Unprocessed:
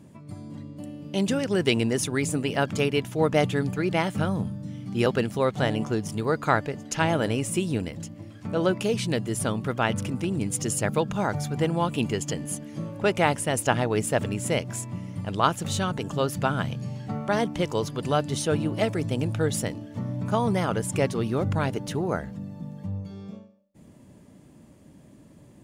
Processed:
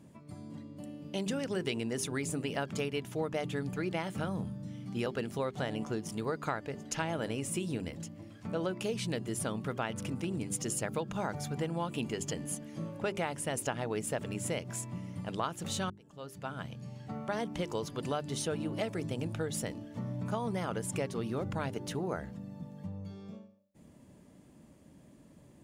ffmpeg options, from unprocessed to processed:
ffmpeg -i in.wav -filter_complex "[0:a]asplit=2[link_01][link_02];[link_01]atrim=end=15.9,asetpts=PTS-STARTPTS,afade=type=out:start_time=15.896:duration=0.004:curve=hsin[link_03];[link_02]atrim=start=15.9,asetpts=PTS-STARTPTS,afade=type=in:duration=1.7[link_04];[link_03][link_04]concat=n=2:v=0:a=1,bandreject=frequency=50:width_type=h:width=6,bandreject=frequency=100:width_type=h:width=6,bandreject=frequency=150:width_type=h:width=6,bandreject=frequency=200:width_type=h:width=6,bandreject=frequency=250:width_type=h:width=6,bandreject=frequency=300:width_type=h:width=6,bandreject=frequency=350:width_type=h:width=6,bandreject=frequency=400:width_type=h:width=6,acompressor=threshold=-25dB:ratio=6,equalizer=frequency=110:width=5.8:gain=-4,volume=-5dB" out.wav

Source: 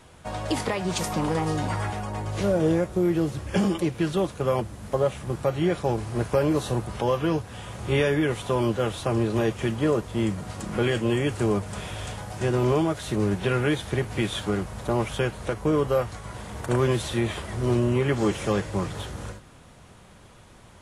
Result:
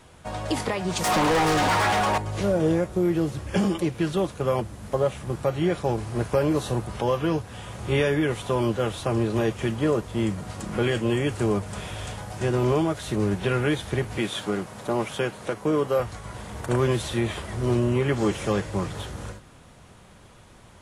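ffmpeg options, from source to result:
ffmpeg -i in.wav -filter_complex "[0:a]asettb=1/sr,asplit=3[link_01][link_02][link_03];[link_01]atrim=end=1.044[link_04];[link_02]atrim=start=1.04:end=2.18,asetpts=PTS-STARTPTS,afade=type=in:duration=0.004:curve=qsin,afade=type=out:start_time=1.136:duration=0.004:curve=qsin,asplit=2[link_05][link_06];[link_06]highpass=frequency=720:poles=1,volume=28dB,asoftclip=type=tanh:threshold=-14.5dB[link_07];[link_05][link_07]amix=inputs=2:normalize=0,lowpass=frequency=4500:poles=1,volume=-6dB[link_08];[link_03]atrim=start=2.176[link_09];[link_04][link_08]acrossfade=duration=0.004:curve1=hsin:curve2=qsin[link_10];[link_10][link_09]acrossfade=duration=0.004:curve1=qsin:curve2=hsin,asettb=1/sr,asplit=3[link_11][link_12][link_13];[link_11]atrim=end=14.184[link_14];[link_12]atrim=start=14.18:end=16,asetpts=PTS-STARTPTS,afade=type=in:duration=0.004:curve=qsin,afade=type=out:start_time=1.816:duration=0.004:curve=qsin,highpass=160[link_15];[link_13]atrim=start=15.996[link_16];[link_14][link_15]acrossfade=duration=0.004:curve1=hsin:curve2=qsin[link_17];[link_17][link_16]acrossfade=duration=0.004:curve1=qsin:curve2=hsin" out.wav

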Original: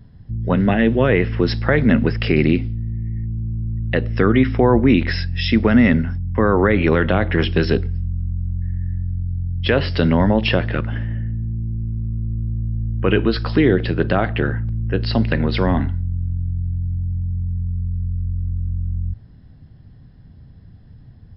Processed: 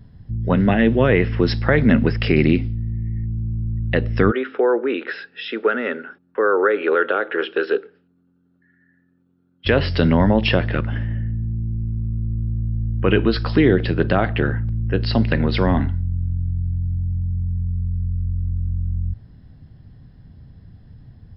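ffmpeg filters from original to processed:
ffmpeg -i in.wav -filter_complex "[0:a]asplit=3[link_01][link_02][link_03];[link_01]afade=type=out:start_time=4.3:duration=0.02[link_04];[link_02]highpass=frequency=390:width=0.5412,highpass=frequency=390:width=1.3066,equalizer=frequency=440:width_type=q:width=4:gain=5,equalizer=frequency=690:width_type=q:width=4:gain=-8,equalizer=frequency=1000:width_type=q:width=4:gain=-7,equalizer=frequency=1400:width_type=q:width=4:gain=8,equalizer=frequency=2100:width_type=q:width=4:gain=-10,equalizer=frequency=3000:width_type=q:width=4:gain=-3,lowpass=frequency=3300:width=0.5412,lowpass=frequency=3300:width=1.3066,afade=type=in:start_time=4.3:duration=0.02,afade=type=out:start_time=9.65:duration=0.02[link_05];[link_03]afade=type=in:start_time=9.65:duration=0.02[link_06];[link_04][link_05][link_06]amix=inputs=3:normalize=0" out.wav

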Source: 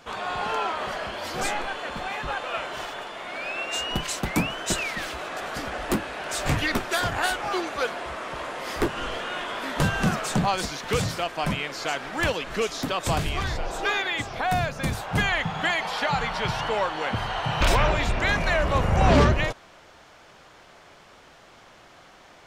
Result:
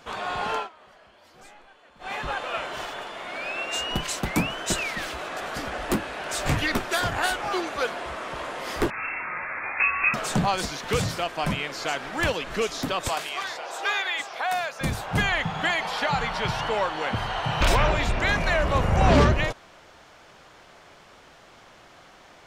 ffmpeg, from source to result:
ffmpeg -i in.wav -filter_complex "[0:a]asettb=1/sr,asplit=3[link_01][link_02][link_03];[link_01]atrim=end=8.904[link_04];[link_02]atrim=start=8.9:end=10.14,asetpts=PTS-STARTPTS,afade=type=in:duration=0.004:curve=qsin,afade=type=out:start_time=1.236:duration=0.004:curve=qsin,lowpass=frequency=2300:width_type=q:width=0.5098,lowpass=frequency=2300:width_type=q:width=0.6013,lowpass=frequency=2300:width_type=q:width=0.9,lowpass=frequency=2300:width_type=q:width=2.563,afreqshift=-2700[link_05];[link_03]atrim=start=10.136[link_06];[link_04][link_05]acrossfade=duration=0.004:curve1=hsin:curve2=qsin[link_07];[link_07][link_06]acrossfade=duration=0.004:curve1=qsin:curve2=hsin,asettb=1/sr,asplit=3[link_08][link_09][link_10];[link_08]atrim=end=13.084[link_11];[link_09]atrim=start=13.08:end=14.81,asetpts=PTS-STARTPTS,afade=type=in:duration=0.004:curve=qsin,afade=type=out:start_time=1.726:duration=0.004:curve=qsin,highpass=610[link_12];[link_10]atrim=start=14.806[link_13];[link_11][link_12]acrossfade=duration=0.004:curve1=hsin:curve2=qsin[link_14];[link_14][link_13]acrossfade=duration=0.004:curve1=qsin:curve2=hsin,asplit=3[link_15][link_16][link_17];[link_15]atrim=end=0.69,asetpts=PTS-STARTPTS,afade=type=out:start_time=0.56:duration=0.13:silence=0.0794328[link_18];[link_16]atrim=start=0.69:end=1.99,asetpts=PTS-STARTPTS,volume=-22dB[link_19];[link_17]atrim=start=1.99,asetpts=PTS-STARTPTS,afade=type=in:duration=0.13:silence=0.0794328[link_20];[link_18][link_19][link_20]concat=n=3:v=0:a=1" out.wav

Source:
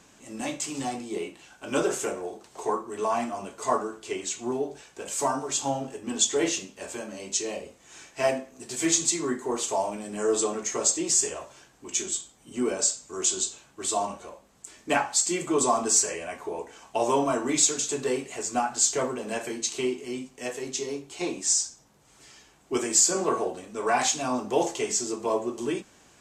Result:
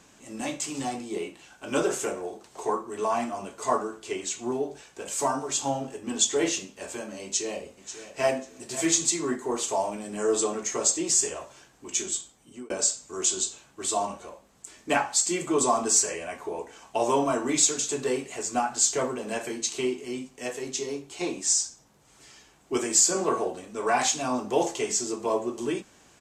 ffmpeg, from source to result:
ffmpeg -i in.wav -filter_complex "[0:a]asplit=2[link_01][link_02];[link_02]afade=type=in:start_time=7.23:duration=0.01,afade=type=out:start_time=8.27:duration=0.01,aecho=0:1:540|1080|1620:0.237137|0.0592843|0.0148211[link_03];[link_01][link_03]amix=inputs=2:normalize=0,asplit=2[link_04][link_05];[link_04]atrim=end=12.7,asetpts=PTS-STARTPTS,afade=type=out:start_time=12.12:duration=0.58:curve=qsin[link_06];[link_05]atrim=start=12.7,asetpts=PTS-STARTPTS,afade=type=in:duration=0.004:curve=hsin[link_07];[link_06][link_07]concat=n=2:v=0:a=1" out.wav

